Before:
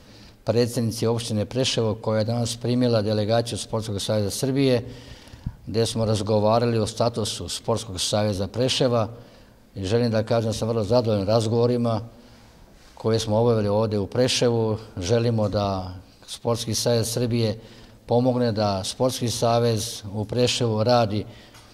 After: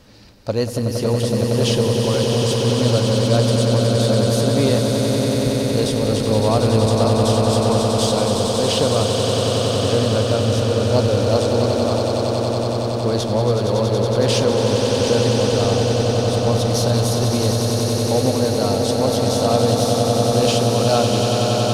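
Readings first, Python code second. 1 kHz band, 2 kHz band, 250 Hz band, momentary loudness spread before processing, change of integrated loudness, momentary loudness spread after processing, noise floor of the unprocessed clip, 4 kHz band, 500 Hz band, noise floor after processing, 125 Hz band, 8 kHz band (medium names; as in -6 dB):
+5.5 dB, +6.0 dB, +5.5 dB, 9 LU, +5.5 dB, 3 LU, -50 dBFS, +6.0 dB, +5.5 dB, -21 dBFS, +7.0 dB, +6.0 dB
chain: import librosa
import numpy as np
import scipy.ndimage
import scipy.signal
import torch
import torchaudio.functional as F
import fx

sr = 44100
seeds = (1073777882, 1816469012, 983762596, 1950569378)

y = fx.cheby_harmonics(x, sr, harmonics=(8,), levels_db=(-34,), full_scale_db=-7.0)
y = fx.echo_swell(y, sr, ms=93, loudest=8, wet_db=-7.0)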